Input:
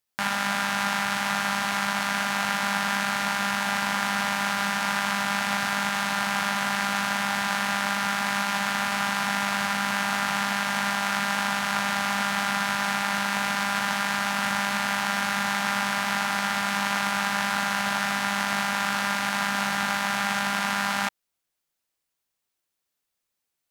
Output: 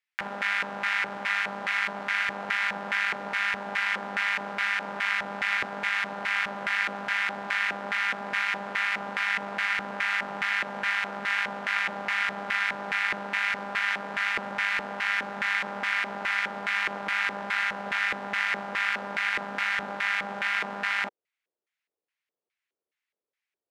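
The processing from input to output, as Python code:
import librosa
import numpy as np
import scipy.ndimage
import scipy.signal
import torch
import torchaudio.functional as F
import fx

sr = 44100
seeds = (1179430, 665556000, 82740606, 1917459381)

y = fx.filter_lfo_bandpass(x, sr, shape='square', hz=2.4, low_hz=440.0, high_hz=2100.0, q=2.8)
y = F.gain(torch.from_numpy(y), 6.0).numpy()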